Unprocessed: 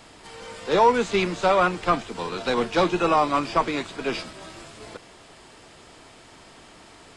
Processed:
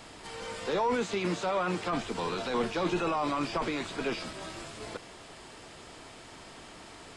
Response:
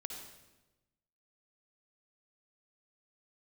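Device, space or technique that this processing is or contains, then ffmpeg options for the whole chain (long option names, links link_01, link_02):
de-esser from a sidechain: -filter_complex "[0:a]asettb=1/sr,asplit=3[link_01][link_02][link_03];[link_01]atrim=end=0.964[link_04];[link_02]atrim=start=0.96:end=1.93,asetpts=PTS-STARTPTS,afade=type=in:duration=0.004:curve=qsin,afade=type=out:start_time=0.966:duration=0.004:curve=qsin,highpass=100[link_05];[link_03]atrim=start=1.926[link_06];[link_04][link_05]acrossfade=duration=0.004:curve1=hsin:curve2=qsin[link_07];[link_07][link_06]acrossfade=duration=0.004:curve1=qsin:curve2=hsin,asplit=2[link_08][link_09];[link_09]highpass=frequency=6300:poles=1,apad=whole_len=316122[link_10];[link_08][link_10]sidechaincompress=threshold=-41dB:ratio=10:attack=0.98:release=20"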